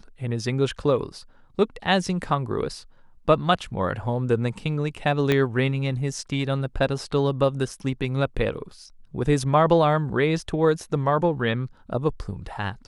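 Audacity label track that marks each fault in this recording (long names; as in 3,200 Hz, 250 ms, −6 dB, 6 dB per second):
5.320000	5.320000	click −9 dBFS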